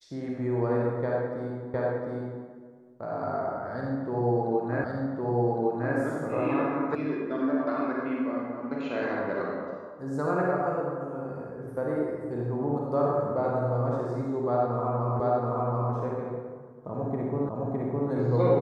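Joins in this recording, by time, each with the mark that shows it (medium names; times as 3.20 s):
1.74 s: repeat of the last 0.71 s
4.84 s: repeat of the last 1.11 s
6.95 s: sound stops dead
15.20 s: repeat of the last 0.73 s
17.49 s: repeat of the last 0.61 s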